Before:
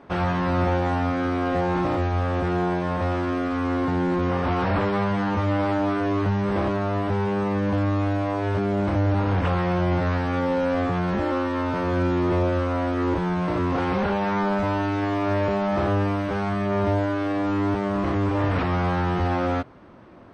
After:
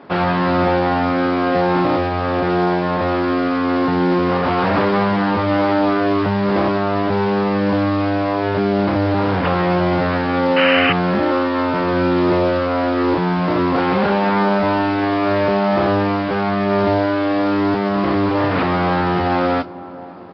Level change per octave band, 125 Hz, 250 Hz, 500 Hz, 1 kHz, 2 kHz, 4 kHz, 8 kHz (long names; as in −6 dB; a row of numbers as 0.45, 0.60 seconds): +1.5 dB, +6.5 dB, +7.5 dB, +7.5 dB, +8.5 dB, +11.5 dB, can't be measured